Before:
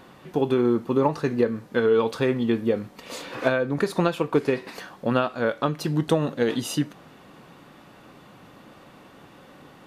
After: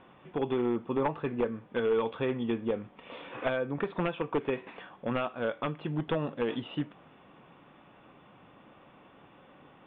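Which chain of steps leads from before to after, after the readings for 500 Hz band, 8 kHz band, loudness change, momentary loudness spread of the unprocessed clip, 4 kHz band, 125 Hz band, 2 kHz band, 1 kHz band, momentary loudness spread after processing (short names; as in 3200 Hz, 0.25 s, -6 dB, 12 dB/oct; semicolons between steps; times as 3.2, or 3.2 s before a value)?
-8.0 dB, under -40 dB, -8.0 dB, 9 LU, -9.0 dB, -9.0 dB, -8.0 dB, -7.0 dB, 9 LU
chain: one-sided fold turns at -14 dBFS; rippled Chebyshev low-pass 3500 Hz, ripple 3 dB; gain -5.5 dB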